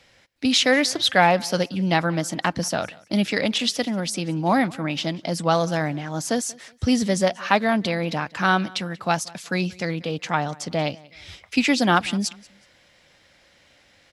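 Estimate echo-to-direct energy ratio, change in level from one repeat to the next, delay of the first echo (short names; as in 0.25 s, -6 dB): -23.0 dB, -10.5 dB, 0.185 s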